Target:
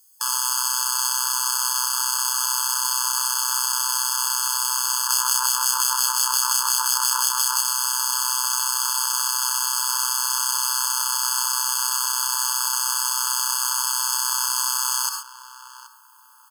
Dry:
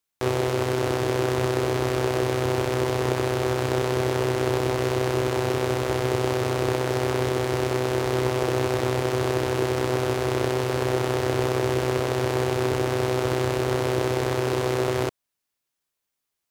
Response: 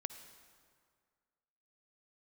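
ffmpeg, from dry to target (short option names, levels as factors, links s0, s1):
-filter_complex "[0:a]highpass=f=140:w=0.5412,highpass=f=140:w=1.3066,equalizer=f=9400:w=0.45:g=4[s0];[1:a]atrim=start_sample=2205,atrim=end_sample=6174[s1];[s0][s1]afir=irnorm=-1:irlink=0,aexciter=amount=8.8:drive=5.8:freq=4000,tiltshelf=f=1200:g=6.5,asplit=2[s2][s3];[s3]adelay=775,lowpass=f=1600:p=1,volume=0.112,asplit=2[s4][s5];[s5]adelay=775,lowpass=f=1600:p=1,volume=0.35,asplit=2[s6][s7];[s7]adelay=775,lowpass=f=1600:p=1,volume=0.35[s8];[s2][s4][s6][s8]amix=inputs=4:normalize=0,asettb=1/sr,asplit=3[s9][s10][s11];[s9]atrim=end=5.074[s12];[s10]atrim=start=5.07:end=7.62,asetpts=PTS-STARTPTS,afade=t=in:d=0.004:c=qsin,afade=t=out:st=2.546:d=0.004:c=qsin,acrossover=split=1600[s13][s14];[s13]aeval=exprs='val(0)*(1-0.7/2+0.7/2*cos(2*PI*5.7*n/s))':c=same[s15];[s14]aeval=exprs='val(0)*(1-0.7/2-0.7/2*cos(2*PI*5.7*n/s))':c=same[s16];[s15][s16]amix=inputs=2:normalize=0[s17];[s11]atrim=start=7.616[s18];[s12][s17]acrossfade=d=0.004:c1=hsin:c2=qsin[s19];[s19][s18]acrossfade=d=0.004:c1=qsin:c2=hsin,alimiter=level_in=4.47:limit=0.891:release=50:level=0:latency=1,afftfilt=real='re*eq(mod(floor(b*sr/1024/870),2),1)':imag='im*eq(mod(floor(b*sr/1024/870),2),1)':win_size=1024:overlap=0.75,volume=1.19"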